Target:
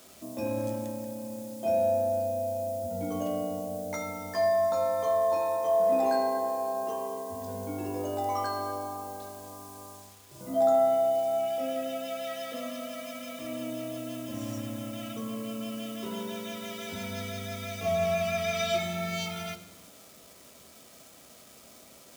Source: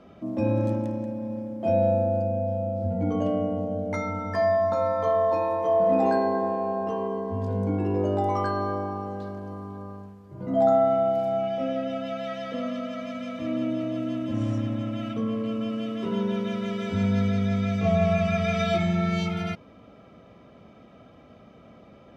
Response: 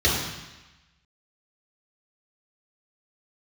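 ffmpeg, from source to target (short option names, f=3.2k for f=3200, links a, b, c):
-filter_complex "[0:a]acrusher=bits=8:mix=0:aa=0.000001,bass=f=250:g=-9,treble=f=4k:g=14,asplit=2[a][b];[1:a]atrim=start_sample=2205[c];[b][c]afir=irnorm=-1:irlink=0,volume=-27.5dB[d];[a][d]amix=inputs=2:normalize=0,volume=-4.5dB"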